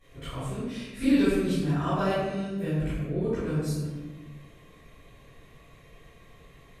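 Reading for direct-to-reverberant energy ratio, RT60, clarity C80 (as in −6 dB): −15.5 dB, 1.3 s, 0.5 dB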